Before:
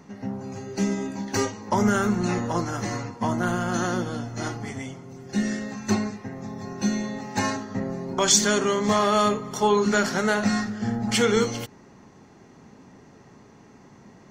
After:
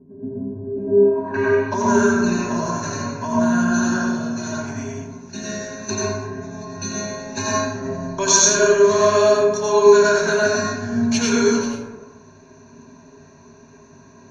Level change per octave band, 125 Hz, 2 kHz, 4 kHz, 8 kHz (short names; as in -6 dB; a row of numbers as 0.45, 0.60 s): +0.5, +5.5, +2.0, +7.0 dB